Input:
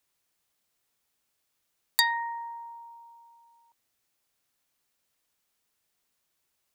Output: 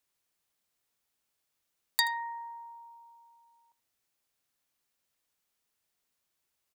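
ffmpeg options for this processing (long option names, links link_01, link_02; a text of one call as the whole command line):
ffmpeg -i in.wav -af "aecho=1:1:78:0.126,volume=-4dB" out.wav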